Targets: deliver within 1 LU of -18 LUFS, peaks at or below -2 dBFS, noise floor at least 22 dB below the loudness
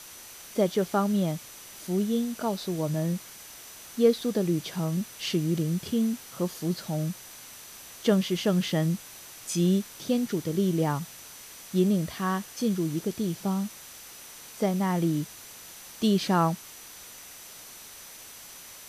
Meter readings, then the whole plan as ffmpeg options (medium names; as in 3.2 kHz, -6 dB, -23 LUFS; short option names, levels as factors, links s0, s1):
steady tone 6 kHz; tone level -52 dBFS; noise floor -46 dBFS; noise floor target -50 dBFS; loudness -28.0 LUFS; peak level -9.0 dBFS; loudness target -18.0 LUFS
-> -af "bandreject=f=6000:w=30"
-af "afftdn=nr=6:nf=-46"
-af "volume=3.16,alimiter=limit=0.794:level=0:latency=1"